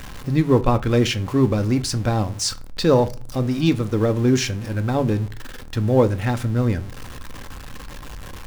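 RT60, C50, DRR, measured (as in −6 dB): 0.40 s, 19.0 dB, 9.5 dB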